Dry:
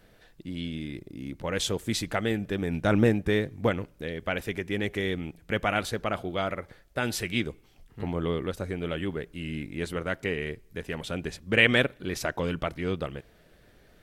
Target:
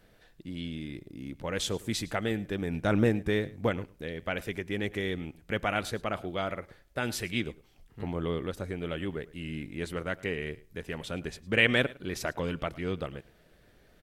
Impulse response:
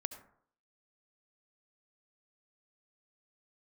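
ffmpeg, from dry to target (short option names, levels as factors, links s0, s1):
-af "aecho=1:1:107:0.0891,volume=0.708"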